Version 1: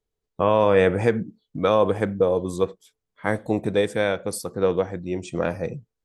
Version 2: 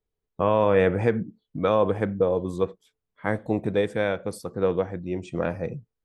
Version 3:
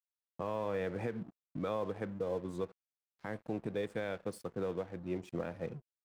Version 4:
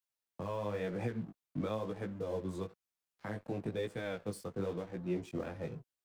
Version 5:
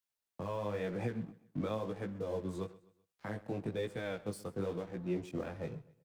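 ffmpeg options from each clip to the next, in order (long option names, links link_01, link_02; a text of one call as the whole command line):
ffmpeg -i in.wav -af "bass=frequency=250:gain=2,treble=frequency=4000:gain=-9,volume=-2.5dB" out.wav
ffmpeg -i in.wav -filter_complex "[0:a]acrossover=split=120[link_01][link_02];[link_01]acompressor=threshold=-46dB:ratio=6[link_03];[link_02]alimiter=limit=-19.5dB:level=0:latency=1:release=241[link_04];[link_03][link_04]amix=inputs=2:normalize=0,aeval=exprs='sgn(val(0))*max(abs(val(0))-0.00422,0)':channel_layout=same,volume=-6.5dB" out.wav
ffmpeg -i in.wav -filter_complex "[0:a]acrossover=split=200|3200[link_01][link_02][link_03];[link_02]alimiter=level_in=9dB:limit=-24dB:level=0:latency=1:release=268,volume=-9dB[link_04];[link_01][link_04][link_03]amix=inputs=3:normalize=0,flanger=delay=16:depth=4.8:speed=1,volume=6dB" out.wav
ffmpeg -i in.wav -af "aecho=1:1:128|256|384:0.1|0.04|0.016" out.wav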